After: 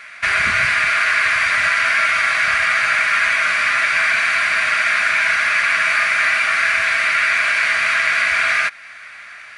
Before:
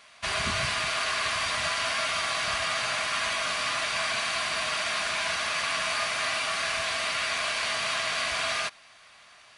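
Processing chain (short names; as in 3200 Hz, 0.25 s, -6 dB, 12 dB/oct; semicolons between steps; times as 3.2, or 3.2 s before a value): band shelf 1800 Hz +14 dB 1.1 oct; in parallel at +1 dB: compressor, threshold -28 dBFS, peak gain reduction 12.5 dB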